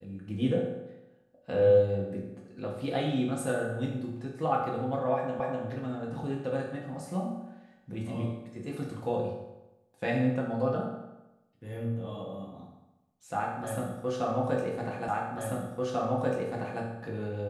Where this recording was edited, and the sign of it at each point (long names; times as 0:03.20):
0:05.40: the same again, the last 0.25 s
0:15.08: the same again, the last 1.74 s